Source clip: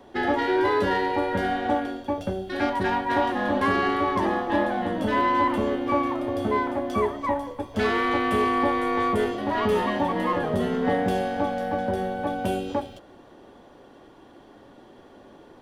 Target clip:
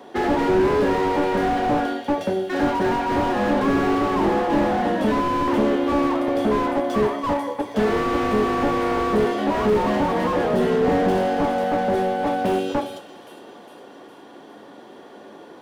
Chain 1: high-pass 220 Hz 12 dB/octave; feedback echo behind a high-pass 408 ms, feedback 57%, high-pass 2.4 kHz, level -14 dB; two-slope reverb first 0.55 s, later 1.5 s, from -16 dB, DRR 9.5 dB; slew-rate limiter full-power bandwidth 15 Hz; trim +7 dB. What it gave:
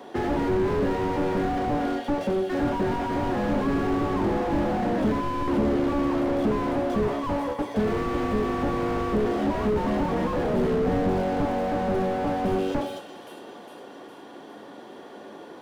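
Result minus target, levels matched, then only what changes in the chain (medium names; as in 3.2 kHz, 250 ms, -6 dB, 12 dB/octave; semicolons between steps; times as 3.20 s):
slew-rate limiter: distortion +7 dB
change: slew-rate limiter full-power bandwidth 34 Hz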